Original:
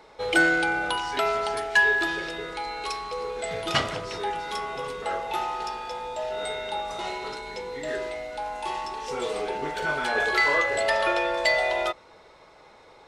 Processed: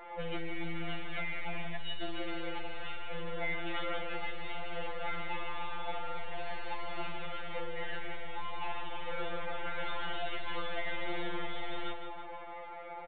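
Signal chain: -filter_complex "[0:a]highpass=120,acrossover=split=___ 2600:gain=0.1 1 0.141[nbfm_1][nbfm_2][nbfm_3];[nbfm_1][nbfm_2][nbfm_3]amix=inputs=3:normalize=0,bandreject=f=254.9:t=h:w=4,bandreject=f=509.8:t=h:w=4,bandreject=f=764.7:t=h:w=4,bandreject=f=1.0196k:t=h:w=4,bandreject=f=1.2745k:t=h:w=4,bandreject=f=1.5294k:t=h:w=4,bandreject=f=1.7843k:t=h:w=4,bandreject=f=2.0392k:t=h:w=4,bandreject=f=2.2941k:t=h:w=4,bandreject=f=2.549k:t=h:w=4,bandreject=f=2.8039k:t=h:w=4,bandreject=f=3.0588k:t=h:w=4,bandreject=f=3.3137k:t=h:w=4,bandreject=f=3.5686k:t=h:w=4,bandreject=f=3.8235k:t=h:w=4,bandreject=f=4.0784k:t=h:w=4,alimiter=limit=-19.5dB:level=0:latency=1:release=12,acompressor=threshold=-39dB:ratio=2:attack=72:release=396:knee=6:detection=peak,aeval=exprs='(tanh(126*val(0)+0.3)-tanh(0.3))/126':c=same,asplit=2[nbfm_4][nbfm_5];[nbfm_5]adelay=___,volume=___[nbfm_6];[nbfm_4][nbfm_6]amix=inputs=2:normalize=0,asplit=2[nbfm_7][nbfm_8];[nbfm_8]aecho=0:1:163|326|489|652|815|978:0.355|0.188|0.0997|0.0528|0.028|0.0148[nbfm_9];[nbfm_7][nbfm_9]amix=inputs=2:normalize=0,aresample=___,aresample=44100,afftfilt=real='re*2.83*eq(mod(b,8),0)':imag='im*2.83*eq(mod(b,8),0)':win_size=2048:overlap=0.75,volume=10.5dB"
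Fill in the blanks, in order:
300, 13, -11dB, 8000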